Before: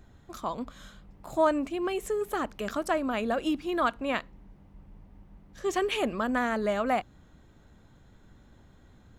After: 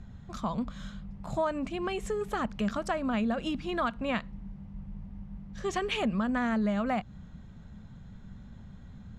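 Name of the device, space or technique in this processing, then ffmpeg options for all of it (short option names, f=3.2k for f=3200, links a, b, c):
jukebox: -af "lowpass=6.7k,lowshelf=f=250:t=q:w=3:g=6.5,acompressor=threshold=-29dB:ratio=3,volume=1.5dB"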